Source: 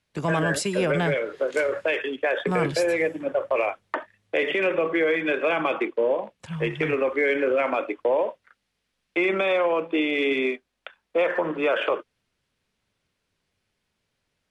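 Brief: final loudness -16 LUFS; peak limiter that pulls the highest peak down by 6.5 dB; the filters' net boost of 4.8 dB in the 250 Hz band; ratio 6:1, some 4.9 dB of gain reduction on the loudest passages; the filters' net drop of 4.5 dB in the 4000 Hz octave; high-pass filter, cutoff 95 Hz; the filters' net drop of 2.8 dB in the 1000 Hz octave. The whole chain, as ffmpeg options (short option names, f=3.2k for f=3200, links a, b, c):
-af "highpass=95,equalizer=f=250:t=o:g=7.5,equalizer=f=1k:t=o:g=-4,equalizer=f=4k:t=o:g=-6,acompressor=threshold=-22dB:ratio=6,volume=13dB,alimiter=limit=-6.5dB:level=0:latency=1"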